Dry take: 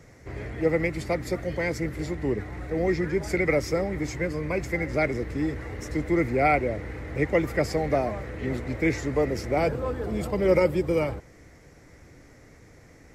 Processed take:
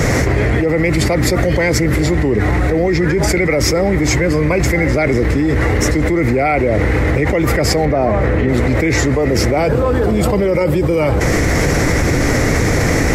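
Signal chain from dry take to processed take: 7.85–8.49 s: treble shelf 3.2 kHz -11 dB; level flattener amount 100%; trim +2.5 dB

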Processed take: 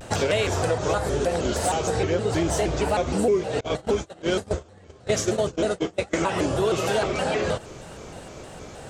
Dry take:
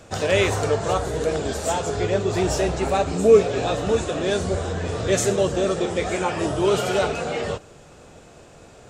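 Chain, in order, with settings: 3.61–6.14 s: gate -21 dBFS, range -30 dB; compression 4:1, threshold -28 dBFS, peak gain reduction 16.5 dB; vibrato with a chosen wave square 3.2 Hz, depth 160 cents; trim +6.5 dB

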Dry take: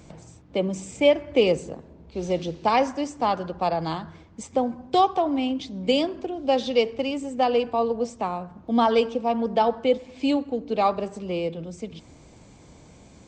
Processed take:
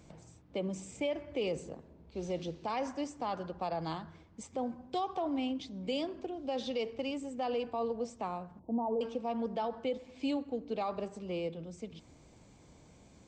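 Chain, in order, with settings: 8.59–9.01 s: elliptic low-pass 960 Hz, stop band 40 dB; peak limiter -17 dBFS, peak gain reduction 9.5 dB; trim -9 dB

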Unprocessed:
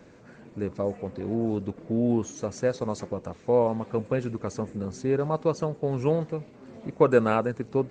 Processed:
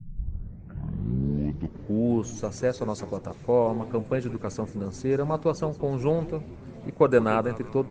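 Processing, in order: tape start-up on the opening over 2.08 s; band noise 82–190 Hz -47 dBFS; frequency-shifting echo 174 ms, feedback 51%, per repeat -120 Hz, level -16 dB

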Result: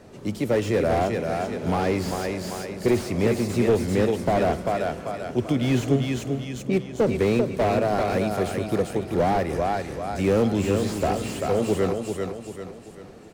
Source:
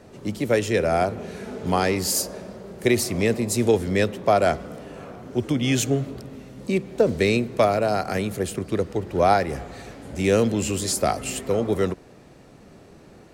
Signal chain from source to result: 6.44–7.04 s: level-controlled noise filter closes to 500 Hz, open at -17 dBFS; feedback delay 391 ms, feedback 43%, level -6.5 dB; slew-rate limiter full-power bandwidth 77 Hz

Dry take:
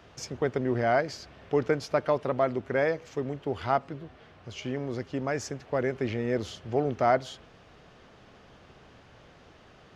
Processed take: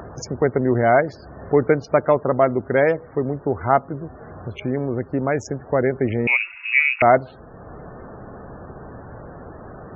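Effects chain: local Wiener filter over 15 samples; in parallel at -3 dB: upward compressor, threshold -28 dBFS; on the sum: loudest bins only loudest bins 64; 6.27–7.02 s: frequency inversion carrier 2.7 kHz; trim +4.5 dB

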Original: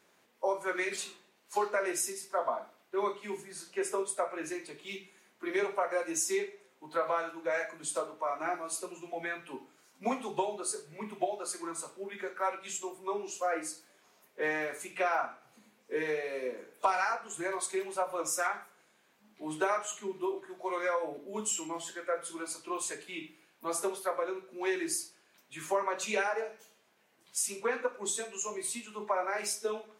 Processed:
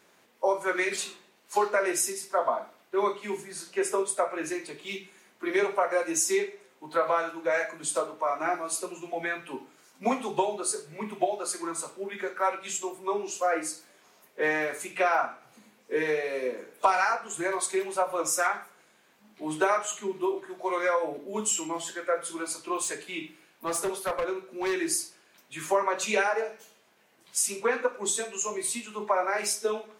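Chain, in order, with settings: 22.84–24.74 s: hard clipper -30 dBFS, distortion -23 dB; trim +5.5 dB

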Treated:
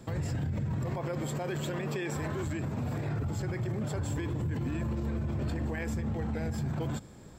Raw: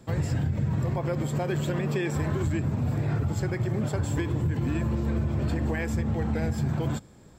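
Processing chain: 0.86–3.09 s: bass shelf 210 Hz -7.5 dB; peak limiter -28 dBFS, peak gain reduction 10 dB; trim +2 dB

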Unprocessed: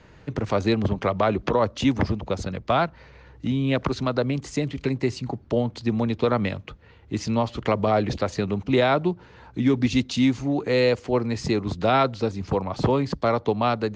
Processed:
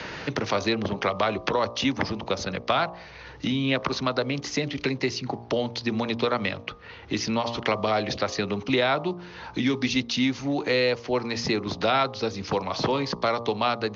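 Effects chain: steep low-pass 6.2 kHz 72 dB/octave; tilt EQ +2.5 dB/octave; de-hum 58.65 Hz, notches 21; three bands compressed up and down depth 70%

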